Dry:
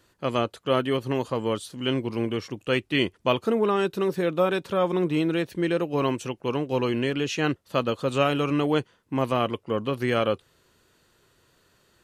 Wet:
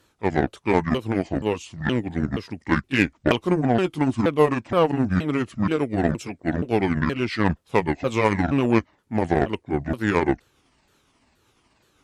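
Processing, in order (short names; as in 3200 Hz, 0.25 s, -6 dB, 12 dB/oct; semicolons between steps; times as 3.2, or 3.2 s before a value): repeated pitch sweeps -10 st, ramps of 0.473 s; added harmonics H 7 -25 dB, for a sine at -9.5 dBFS; gain +5.5 dB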